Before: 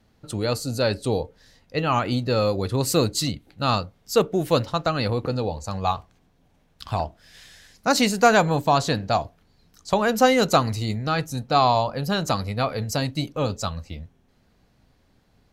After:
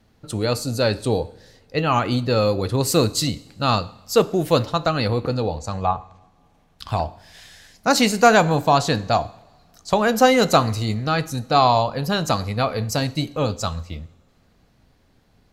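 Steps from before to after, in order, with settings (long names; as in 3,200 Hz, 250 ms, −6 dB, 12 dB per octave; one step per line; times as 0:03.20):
0:05.56–0:06.89: treble cut that deepens with the level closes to 1,600 Hz, closed at −21 dBFS
coupled-rooms reverb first 0.69 s, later 2.4 s, from −18 dB, DRR 15.5 dB
level +2.5 dB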